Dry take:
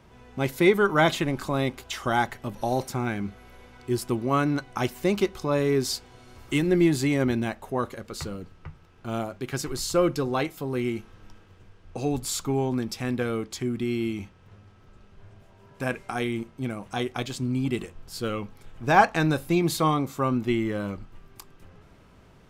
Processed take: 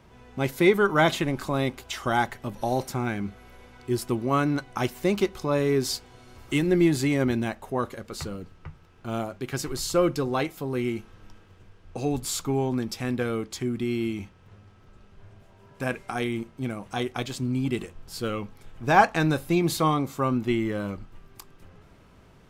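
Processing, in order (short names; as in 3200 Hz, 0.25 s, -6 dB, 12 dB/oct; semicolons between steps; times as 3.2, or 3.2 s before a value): AAC 96 kbps 48000 Hz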